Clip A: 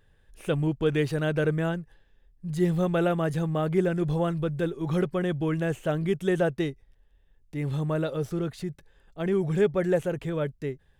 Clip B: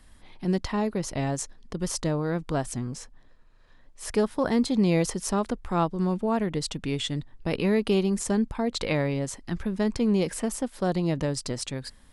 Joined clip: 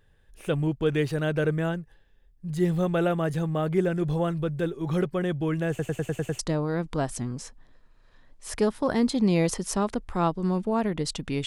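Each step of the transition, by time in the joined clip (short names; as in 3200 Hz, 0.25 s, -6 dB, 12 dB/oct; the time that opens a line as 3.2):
clip A
5.69 stutter in place 0.10 s, 7 plays
6.39 switch to clip B from 1.95 s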